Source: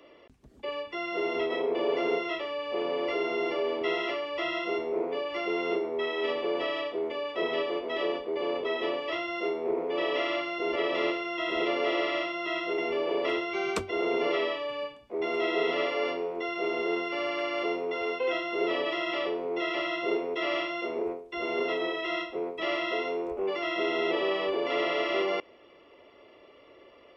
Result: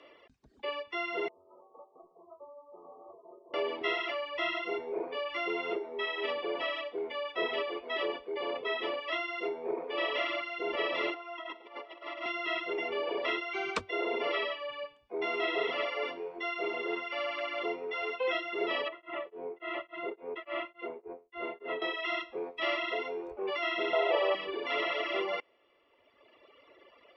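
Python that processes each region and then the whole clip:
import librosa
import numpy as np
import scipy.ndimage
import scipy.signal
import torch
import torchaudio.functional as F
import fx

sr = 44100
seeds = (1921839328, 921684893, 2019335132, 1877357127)

y = fx.chain(x, sr, fx.over_compress(threshold_db=-30.0, ratio=-0.5),
    fx.brickwall_lowpass(high_hz=1300.0),
    fx.stiff_resonator(f0_hz=91.0, decay_s=0.5, stiffness=0.002), at=(1.28, 3.54))
y = fx.chain(y, sr, fx.cheby_ripple_highpass(hz=220.0, ripple_db=9),
    fx.over_compress(threshold_db=-37.0, ratio=-0.5), at=(11.14, 12.26))
y = fx.chain(y, sr, fx.air_absorb(metres=470.0),
    fx.tremolo_abs(hz=3.5), at=(18.88, 21.82))
y = fx.chain(y, sr, fx.highpass(hz=450.0, slope=12),
    fx.peak_eq(hz=610.0, db=9.5, octaves=1.2), at=(23.93, 24.35))
y = scipy.signal.sosfilt(scipy.signal.butter(2, 4400.0, 'lowpass', fs=sr, output='sos'), y)
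y = fx.dereverb_blind(y, sr, rt60_s=1.8)
y = fx.low_shelf(y, sr, hz=430.0, db=-11.0)
y = y * librosa.db_to_amplitude(2.5)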